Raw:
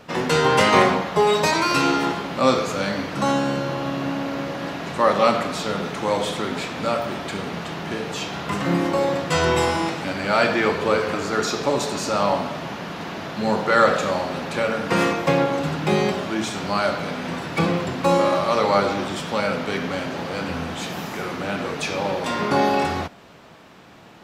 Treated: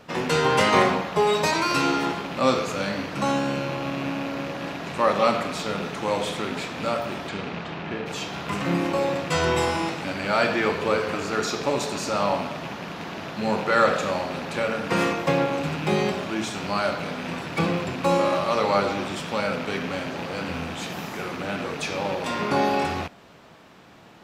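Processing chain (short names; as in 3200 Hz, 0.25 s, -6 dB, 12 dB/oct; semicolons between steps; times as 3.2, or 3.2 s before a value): rattling part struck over -32 dBFS, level -24 dBFS; 7.28–8.05 LPF 5900 Hz -> 2900 Hz 12 dB/oct; gain -3 dB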